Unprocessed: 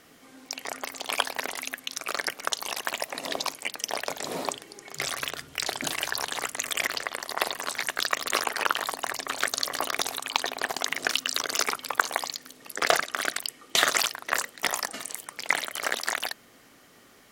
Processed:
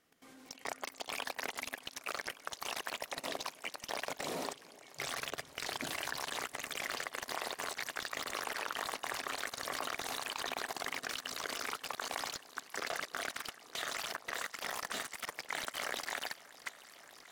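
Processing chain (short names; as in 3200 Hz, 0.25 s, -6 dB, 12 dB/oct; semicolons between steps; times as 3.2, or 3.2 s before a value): echo with dull and thin repeats by turns 0.292 s, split 820 Hz, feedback 89%, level -13 dB; level quantiser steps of 18 dB; slew limiter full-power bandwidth 120 Hz; gain -2.5 dB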